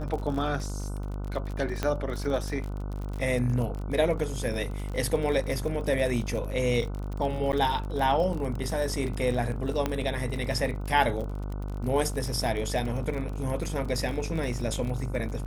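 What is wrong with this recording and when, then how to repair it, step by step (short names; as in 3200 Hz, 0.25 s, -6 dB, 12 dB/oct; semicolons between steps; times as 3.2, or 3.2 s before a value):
buzz 50 Hz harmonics 30 -33 dBFS
crackle 43/s -33 dBFS
1.83 pop -13 dBFS
7.52–7.53 gap 9.1 ms
9.86 pop -13 dBFS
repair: de-click; de-hum 50 Hz, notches 30; interpolate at 7.52, 9.1 ms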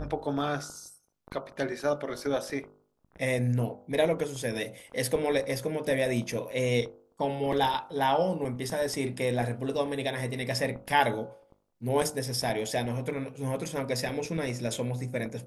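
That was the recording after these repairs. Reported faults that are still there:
9.86 pop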